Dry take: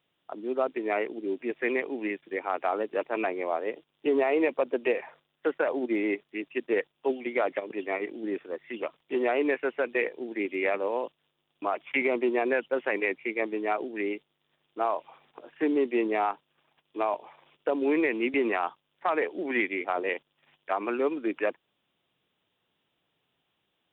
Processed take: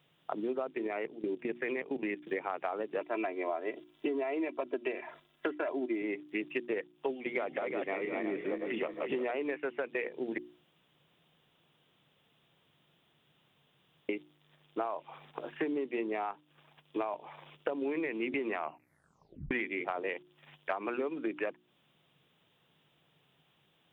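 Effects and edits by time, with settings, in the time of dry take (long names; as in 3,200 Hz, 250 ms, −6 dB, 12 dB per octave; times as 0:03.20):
0:00.87–0:02.29: output level in coarse steps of 17 dB
0:03.01–0:06.02: comb filter 3 ms, depth 66%
0:07.17–0:09.31: feedback delay that plays each chunk backwards 177 ms, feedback 58%, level −5 dB
0:10.38–0:14.09: fill with room tone
0:18.55: tape stop 0.96 s
whole clip: parametric band 150 Hz +9 dB 0.48 octaves; mains-hum notches 60/120/180/240/300/360 Hz; downward compressor 12 to 1, threshold −37 dBFS; level +6 dB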